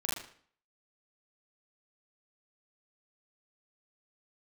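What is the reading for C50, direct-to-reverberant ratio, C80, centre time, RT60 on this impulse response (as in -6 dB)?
1.0 dB, -5.5 dB, 7.0 dB, 54 ms, 0.50 s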